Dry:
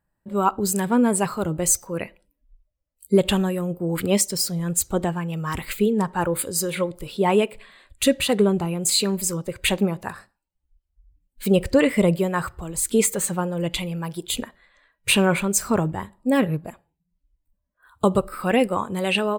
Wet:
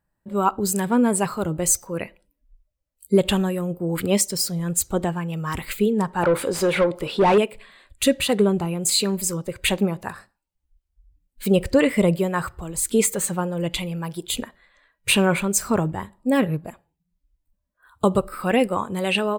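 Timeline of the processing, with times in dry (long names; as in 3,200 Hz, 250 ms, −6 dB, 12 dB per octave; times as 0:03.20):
0:06.23–0:07.38: mid-hump overdrive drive 22 dB, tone 1,300 Hz, clips at −8.5 dBFS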